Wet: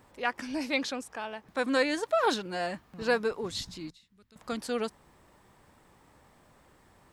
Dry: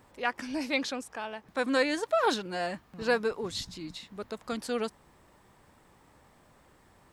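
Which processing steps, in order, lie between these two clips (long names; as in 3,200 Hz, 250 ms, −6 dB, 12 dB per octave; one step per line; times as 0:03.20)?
0:03.90–0:04.36: guitar amp tone stack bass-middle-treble 6-0-2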